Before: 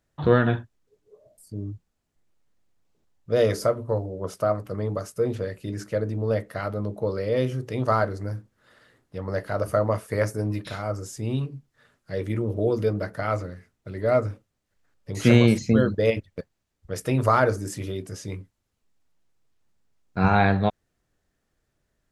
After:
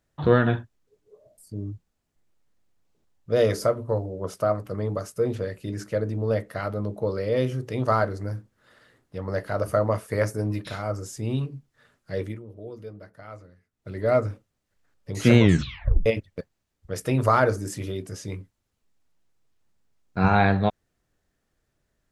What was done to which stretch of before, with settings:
12.21–13.89 dip -16 dB, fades 0.18 s
15.38 tape stop 0.68 s

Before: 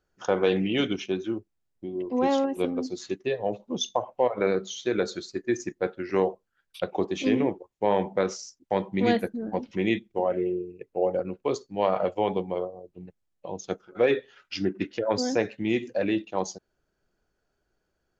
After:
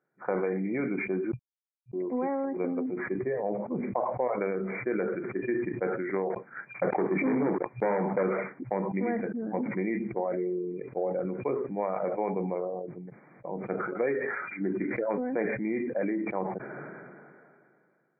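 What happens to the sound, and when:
1.32–1.93 mute
6.3–8.23 sample leveller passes 3
whole clip: compressor 4:1, threshold -26 dBFS; FFT band-pass 120–2400 Hz; sustainer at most 26 dB/s; gain -1 dB

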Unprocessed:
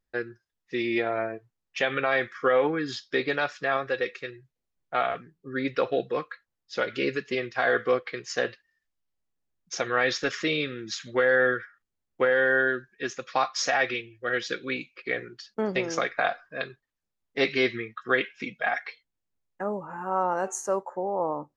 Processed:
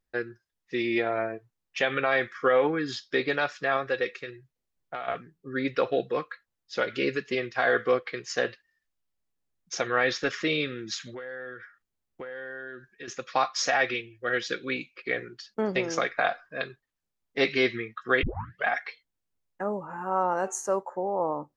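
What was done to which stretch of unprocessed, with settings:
4.21–5.08 compressor, threshold -31 dBFS
9.87–10.5 high shelf 6600 Hz -7.5 dB
11.13–13.08 compressor 4:1, threshold -39 dBFS
18.23 tape start 0.42 s

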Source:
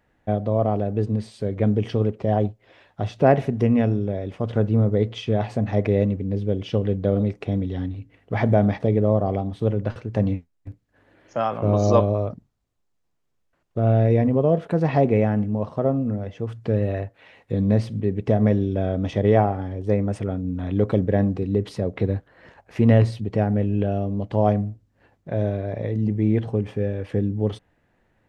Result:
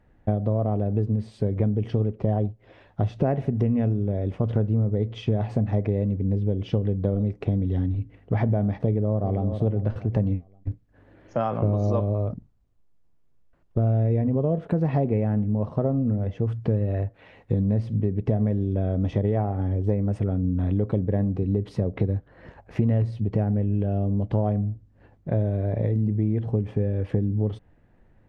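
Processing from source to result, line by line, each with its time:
8.82–9.46 echo throw 0.39 s, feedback 25%, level -13.5 dB
whole clip: tilt -2.5 dB/oct; compressor, threshold -20 dBFS

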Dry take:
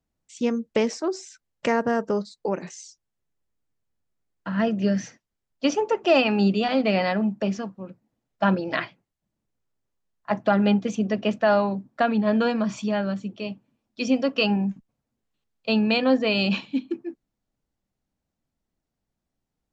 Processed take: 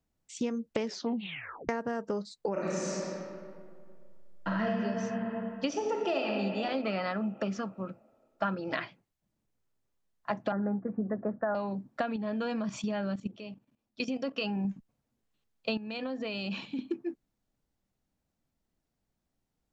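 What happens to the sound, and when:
0.84 tape stop 0.85 s
2.52–4.7 reverb throw, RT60 2.1 s, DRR -7.5 dB
5.68–6.29 reverb throw, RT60 2.3 s, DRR 0 dB
6.84–8.73 bell 1300 Hz +12.5 dB 0.31 oct
10.52–11.55 steep low-pass 1800 Hz 72 dB/oct
12.16–14.65 level quantiser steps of 14 dB
15.77–16.79 compressor, threshold -32 dBFS
whole clip: compressor 6:1, threshold -29 dBFS

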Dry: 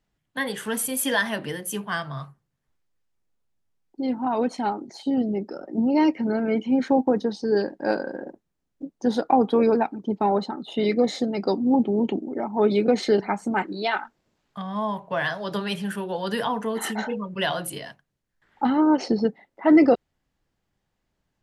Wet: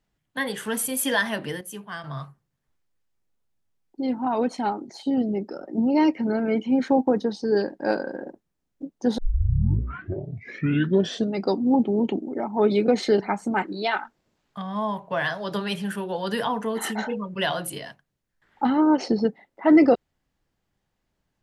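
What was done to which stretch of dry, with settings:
1.61–2.04 gain -7.5 dB
9.18 tape start 2.25 s

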